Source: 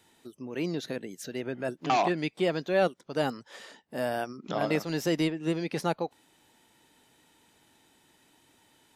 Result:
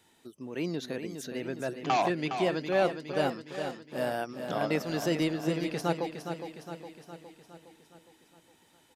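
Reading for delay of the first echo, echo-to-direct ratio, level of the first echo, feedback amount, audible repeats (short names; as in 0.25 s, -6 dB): 0.412 s, -6.5 dB, -8.0 dB, 56%, 6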